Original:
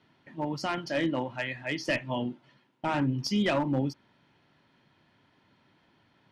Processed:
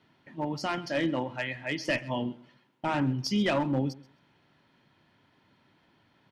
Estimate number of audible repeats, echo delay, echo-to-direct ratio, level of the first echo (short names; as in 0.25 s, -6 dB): 2, 0.132 s, -20.5 dB, -20.5 dB